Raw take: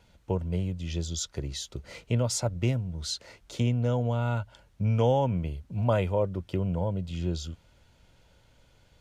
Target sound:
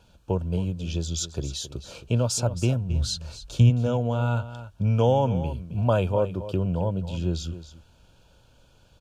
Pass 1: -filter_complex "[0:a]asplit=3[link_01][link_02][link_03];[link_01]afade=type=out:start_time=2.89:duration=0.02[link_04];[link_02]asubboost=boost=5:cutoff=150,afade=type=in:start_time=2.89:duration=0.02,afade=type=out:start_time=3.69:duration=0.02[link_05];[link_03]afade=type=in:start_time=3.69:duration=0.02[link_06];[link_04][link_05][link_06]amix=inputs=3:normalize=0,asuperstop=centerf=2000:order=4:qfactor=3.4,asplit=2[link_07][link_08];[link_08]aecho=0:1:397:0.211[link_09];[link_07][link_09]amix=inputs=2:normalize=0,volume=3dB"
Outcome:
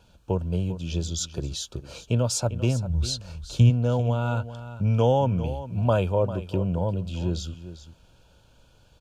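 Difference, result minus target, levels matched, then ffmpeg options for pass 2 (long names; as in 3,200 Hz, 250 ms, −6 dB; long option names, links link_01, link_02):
echo 128 ms late
-filter_complex "[0:a]asplit=3[link_01][link_02][link_03];[link_01]afade=type=out:start_time=2.89:duration=0.02[link_04];[link_02]asubboost=boost=5:cutoff=150,afade=type=in:start_time=2.89:duration=0.02,afade=type=out:start_time=3.69:duration=0.02[link_05];[link_03]afade=type=in:start_time=3.69:duration=0.02[link_06];[link_04][link_05][link_06]amix=inputs=3:normalize=0,asuperstop=centerf=2000:order=4:qfactor=3.4,asplit=2[link_07][link_08];[link_08]aecho=0:1:269:0.211[link_09];[link_07][link_09]amix=inputs=2:normalize=0,volume=3dB"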